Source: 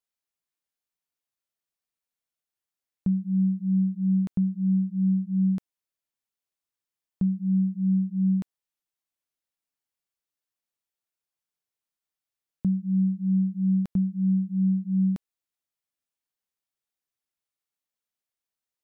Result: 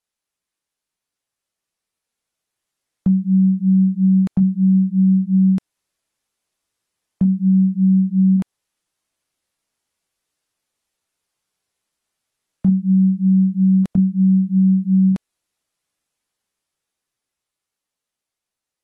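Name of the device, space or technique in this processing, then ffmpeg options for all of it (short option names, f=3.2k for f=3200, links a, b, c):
low-bitrate web radio: -af "dynaudnorm=f=460:g=11:m=6dB,alimiter=limit=-15.5dB:level=0:latency=1:release=281,volume=6dB" -ar 32000 -c:a aac -b:a 32k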